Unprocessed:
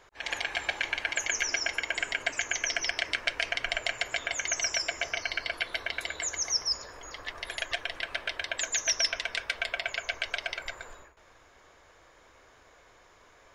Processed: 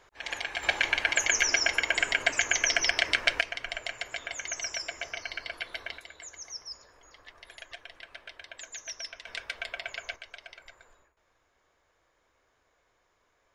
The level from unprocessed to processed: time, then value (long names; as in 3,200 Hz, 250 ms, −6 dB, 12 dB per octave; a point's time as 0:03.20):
−2 dB
from 0:00.63 +4.5 dB
from 0:03.41 −5 dB
from 0:05.98 −12.5 dB
from 0:09.27 −5 dB
from 0:10.16 −13.5 dB